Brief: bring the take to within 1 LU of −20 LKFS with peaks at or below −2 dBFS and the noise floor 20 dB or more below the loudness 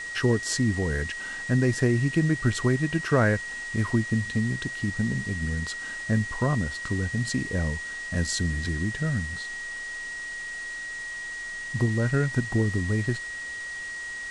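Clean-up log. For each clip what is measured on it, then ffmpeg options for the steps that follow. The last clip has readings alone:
interfering tone 1,900 Hz; level of the tone −33 dBFS; background noise floor −36 dBFS; target noise floor −48 dBFS; integrated loudness −27.5 LKFS; sample peak −9.5 dBFS; target loudness −20.0 LKFS
→ -af "bandreject=frequency=1900:width=30"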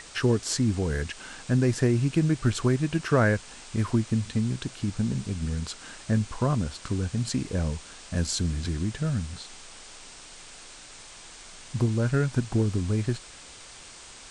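interfering tone none found; background noise floor −47 dBFS; target noise floor −48 dBFS
→ -af "afftdn=noise_reduction=6:noise_floor=-47"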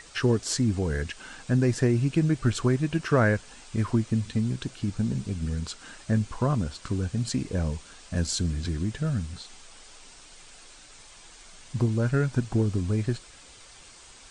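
background noise floor −50 dBFS; integrated loudness −27.5 LKFS; sample peak −10.0 dBFS; target loudness −20.0 LKFS
→ -af "volume=7.5dB"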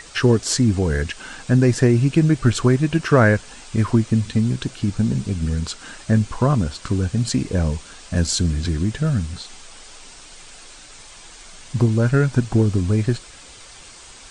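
integrated loudness −20.0 LKFS; sample peak −2.5 dBFS; background noise floor −43 dBFS

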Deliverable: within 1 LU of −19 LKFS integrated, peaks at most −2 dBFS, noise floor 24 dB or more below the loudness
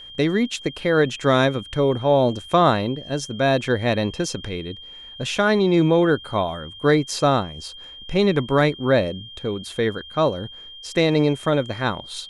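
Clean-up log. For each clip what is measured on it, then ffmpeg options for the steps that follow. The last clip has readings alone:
interfering tone 3,200 Hz; level of the tone −38 dBFS; integrated loudness −21.0 LKFS; sample peak −4.5 dBFS; target loudness −19.0 LKFS
→ -af "bandreject=frequency=3200:width=30"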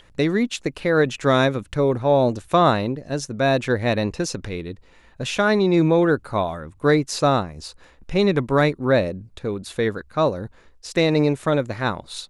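interfering tone none found; integrated loudness −21.0 LKFS; sample peak −4.5 dBFS; target loudness −19.0 LKFS
→ -af "volume=2dB"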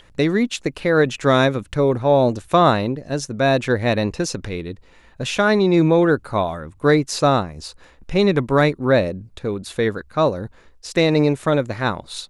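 integrated loudness −19.0 LKFS; sample peak −2.5 dBFS; background noise floor −51 dBFS

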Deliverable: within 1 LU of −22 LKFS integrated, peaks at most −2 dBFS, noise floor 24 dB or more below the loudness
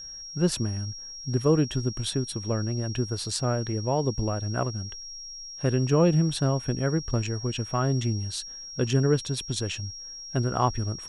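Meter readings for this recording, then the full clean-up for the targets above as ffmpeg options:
interfering tone 5,600 Hz; level of the tone −38 dBFS; integrated loudness −27.0 LKFS; sample peak −10.5 dBFS; target loudness −22.0 LKFS
→ -af "bandreject=frequency=5600:width=30"
-af "volume=5dB"

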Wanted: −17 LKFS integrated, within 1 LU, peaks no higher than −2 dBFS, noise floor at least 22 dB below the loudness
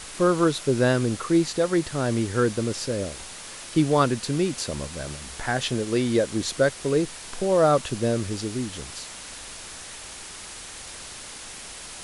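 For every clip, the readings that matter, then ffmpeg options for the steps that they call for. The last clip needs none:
background noise floor −40 dBFS; target noise floor −47 dBFS; integrated loudness −24.5 LKFS; sample peak −7.5 dBFS; target loudness −17.0 LKFS
→ -af "afftdn=noise_reduction=7:noise_floor=-40"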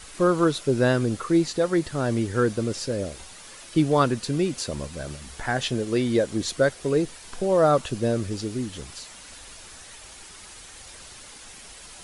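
background noise floor −45 dBFS; target noise floor −47 dBFS
→ -af "afftdn=noise_reduction=6:noise_floor=-45"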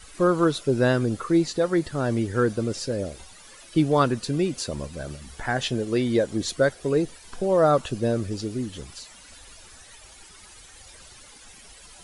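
background noise floor −48 dBFS; integrated loudness −24.5 LKFS; sample peak −8.0 dBFS; target loudness −17.0 LKFS
→ -af "volume=7.5dB,alimiter=limit=-2dB:level=0:latency=1"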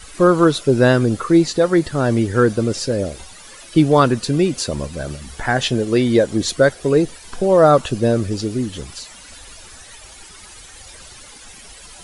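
integrated loudness −17.0 LKFS; sample peak −2.0 dBFS; background noise floor −41 dBFS

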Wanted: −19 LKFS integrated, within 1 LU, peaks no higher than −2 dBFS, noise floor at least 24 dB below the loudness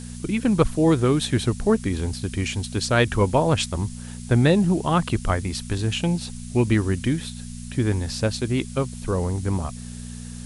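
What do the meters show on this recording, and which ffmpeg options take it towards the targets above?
mains hum 60 Hz; hum harmonics up to 240 Hz; level of the hum −33 dBFS; background noise floor −36 dBFS; target noise floor −47 dBFS; integrated loudness −23.0 LKFS; sample peak −4.5 dBFS; target loudness −19.0 LKFS
→ -af "bandreject=frequency=60:width_type=h:width=4,bandreject=frequency=120:width_type=h:width=4,bandreject=frequency=180:width_type=h:width=4,bandreject=frequency=240:width_type=h:width=4"
-af "afftdn=noise_reduction=11:noise_floor=-36"
-af "volume=4dB,alimiter=limit=-2dB:level=0:latency=1"

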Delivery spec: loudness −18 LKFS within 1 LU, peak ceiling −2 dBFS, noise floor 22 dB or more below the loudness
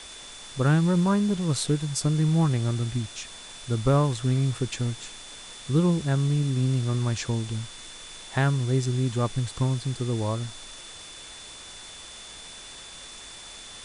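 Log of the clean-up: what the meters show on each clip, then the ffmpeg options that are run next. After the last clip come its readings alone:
interfering tone 3,500 Hz; level of the tone −45 dBFS; background noise floor −43 dBFS; target noise floor −48 dBFS; integrated loudness −25.5 LKFS; sample peak −10.5 dBFS; target loudness −18.0 LKFS
→ -af "bandreject=frequency=3500:width=30"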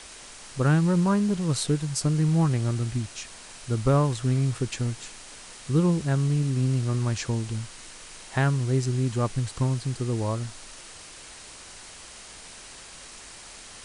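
interfering tone none found; background noise floor −45 dBFS; target noise floor −48 dBFS
→ -af "afftdn=noise_reduction=6:noise_floor=-45"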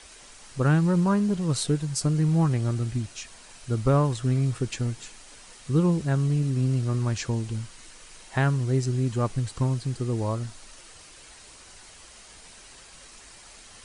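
background noise floor −49 dBFS; integrated loudness −25.5 LKFS; sample peak −10.5 dBFS; target loudness −18.0 LKFS
→ -af "volume=7.5dB"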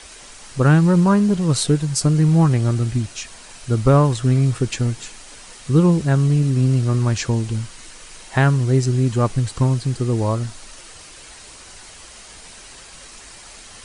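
integrated loudness −18.0 LKFS; sample peak −3.0 dBFS; background noise floor −42 dBFS

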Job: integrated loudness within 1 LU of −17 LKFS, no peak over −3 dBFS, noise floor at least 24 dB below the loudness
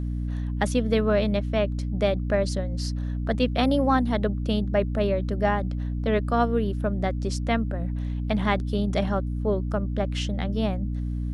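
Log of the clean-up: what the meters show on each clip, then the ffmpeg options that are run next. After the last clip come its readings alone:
mains hum 60 Hz; hum harmonics up to 300 Hz; level of the hum −26 dBFS; integrated loudness −26.0 LKFS; sample peak −8.5 dBFS; target loudness −17.0 LKFS
→ -af "bandreject=frequency=60:width_type=h:width=6,bandreject=frequency=120:width_type=h:width=6,bandreject=frequency=180:width_type=h:width=6,bandreject=frequency=240:width_type=h:width=6,bandreject=frequency=300:width_type=h:width=6"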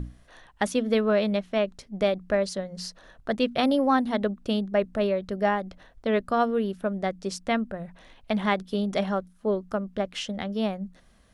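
mains hum none found; integrated loudness −27.0 LKFS; sample peak −9.5 dBFS; target loudness −17.0 LKFS
→ -af "volume=10dB,alimiter=limit=-3dB:level=0:latency=1"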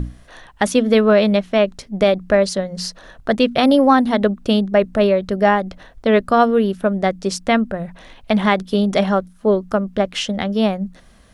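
integrated loudness −17.5 LKFS; sample peak −3.0 dBFS; background noise floor −48 dBFS

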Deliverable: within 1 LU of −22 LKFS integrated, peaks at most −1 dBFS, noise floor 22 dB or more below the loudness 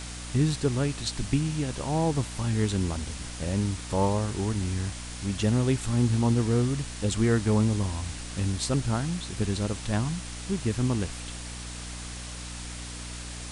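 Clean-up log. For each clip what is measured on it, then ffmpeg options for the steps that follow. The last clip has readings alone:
mains hum 60 Hz; hum harmonics up to 300 Hz; level of the hum −39 dBFS; background noise floor −38 dBFS; target noise floor −51 dBFS; integrated loudness −28.5 LKFS; sample peak −11.5 dBFS; target loudness −22.0 LKFS
→ -af "bandreject=frequency=60:width_type=h:width=6,bandreject=frequency=120:width_type=h:width=6,bandreject=frequency=180:width_type=h:width=6,bandreject=frequency=240:width_type=h:width=6,bandreject=frequency=300:width_type=h:width=6"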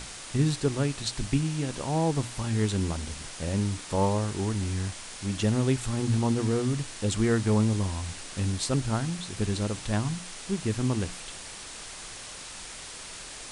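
mains hum none found; background noise floor −42 dBFS; target noise floor −51 dBFS
→ -af "afftdn=noise_reduction=9:noise_floor=-42"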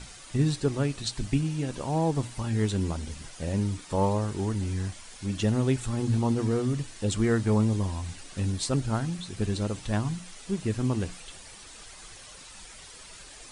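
background noise floor −47 dBFS; target noise floor −51 dBFS
→ -af "afftdn=noise_reduction=6:noise_floor=-47"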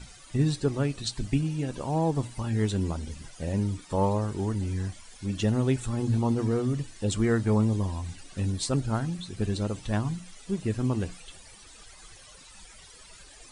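background noise floor −51 dBFS; integrated loudness −29.0 LKFS; sample peak −13.0 dBFS; target loudness −22.0 LKFS
→ -af "volume=7dB"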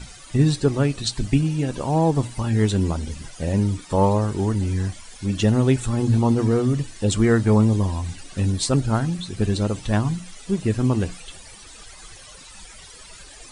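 integrated loudness −22.0 LKFS; sample peak −6.0 dBFS; background noise floor −44 dBFS

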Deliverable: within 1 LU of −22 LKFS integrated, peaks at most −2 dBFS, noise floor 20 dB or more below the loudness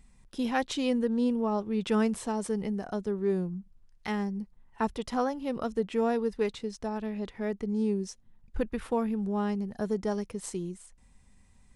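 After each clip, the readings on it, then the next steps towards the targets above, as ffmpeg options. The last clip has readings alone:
integrated loudness −31.0 LKFS; sample peak −15.0 dBFS; target loudness −22.0 LKFS
→ -af "volume=9dB"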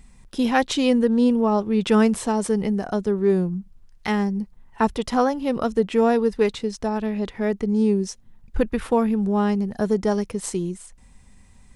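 integrated loudness −22.0 LKFS; sample peak −6.0 dBFS; background noise floor −51 dBFS

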